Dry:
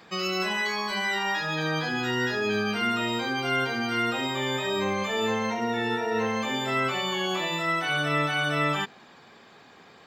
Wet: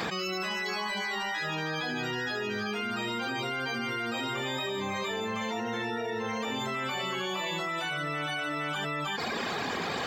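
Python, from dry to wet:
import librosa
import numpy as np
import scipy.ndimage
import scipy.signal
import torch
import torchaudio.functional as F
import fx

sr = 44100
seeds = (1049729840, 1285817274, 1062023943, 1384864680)

y = fx.dereverb_blind(x, sr, rt60_s=0.92)
y = y + 10.0 ** (-5.0 / 20.0) * np.pad(y, (int(316 * sr / 1000.0), 0))[:len(y)]
y = fx.env_flatten(y, sr, amount_pct=100)
y = y * 10.0 ** (-8.5 / 20.0)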